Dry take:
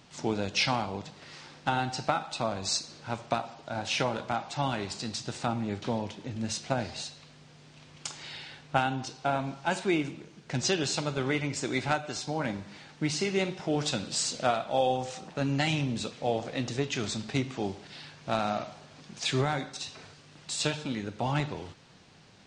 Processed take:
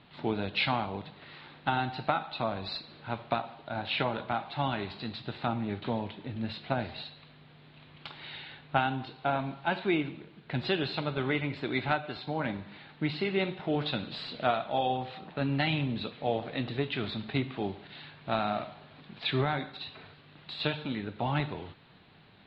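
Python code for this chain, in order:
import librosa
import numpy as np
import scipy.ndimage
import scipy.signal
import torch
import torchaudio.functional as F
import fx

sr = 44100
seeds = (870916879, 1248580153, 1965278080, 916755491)

y = scipy.signal.sosfilt(scipy.signal.ellip(4, 1.0, 40, 4000.0, 'lowpass', fs=sr, output='sos'), x)
y = fx.notch(y, sr, hz=520.0, q=16.0)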